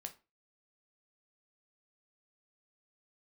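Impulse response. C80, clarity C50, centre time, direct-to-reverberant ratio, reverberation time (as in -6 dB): 22.0 dB, 15.5 dB, 7 ms, 5.5 dB, 0.30 s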